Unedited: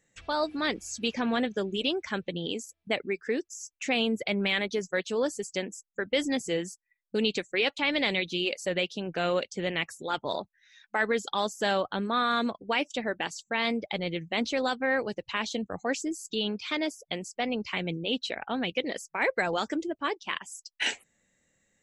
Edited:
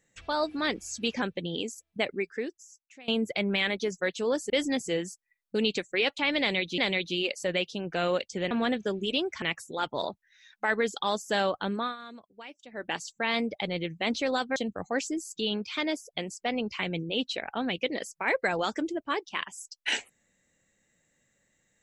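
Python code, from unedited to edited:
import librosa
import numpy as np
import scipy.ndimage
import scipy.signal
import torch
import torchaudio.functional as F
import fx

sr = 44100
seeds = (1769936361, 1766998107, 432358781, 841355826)

y = fx.edit(x, sr, fx.move(start_s=1.22, length_s=0.91, to_s=9.73),
    fx.fade_out_to(start_s=3.14, length_s=0.85, curve='qua', floor_db=-22.5),
    fx.cut(start_s=5.41, length_s=0.69),
    fx.repeat(start_s=8.0, length_s=0.38, count=2),
    fx.fade_down_up(start_s=12.07, length_s=1.15, db=-17.5, fade_s=0.2),
    fx.cut(start_s=14.87, length_s=0.63), tone=tone)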